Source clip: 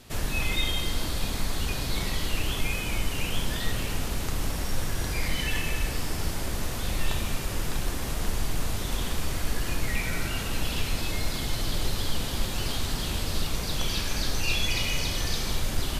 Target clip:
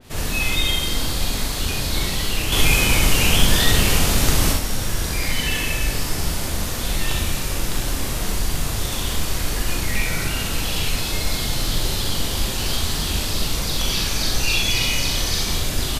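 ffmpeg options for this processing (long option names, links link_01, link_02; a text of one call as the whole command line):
ffmpeg -i in.wav -filter_complex "[0:a]asettb=1/sr,asplit=3[link_01][link_02][link_03];[link_01]atrim=end=2.524[link_04];[link_02]atrim=start=2.52:end=4.53,asetpts=PTS-STARTPTS,afade=type=in:duration=0.004:curve=qsin,afade=type=out:start_time=2.006:duration=0.004:curve=qsin,acontrast=75[link_05];[link_03]atrim=start=4.526[link_06];[link_04][link_05]acrossfade=duration=0.004:curve1=hsin:curve2=qsin[link_07];[link_07][link_06]acrossfade=duration=0.004:curve1=qsin:curve2=hsin,asplit=2[link_08][link_09];[link_09]aecho=0:1:40|65:0.631|0.631[link_10];[link_08][link_10]amix=inputs=2:normalize=0,adynamicequalizer=threshold=0.0112:dfrequency=2800:dqfactor=0.7:tfrequency=2800:tqfactor=0.7:attack=5:release=100:ratio=0.375:range=2:mode=boostabove:tftype=highshelf,volume=3dB" out.wav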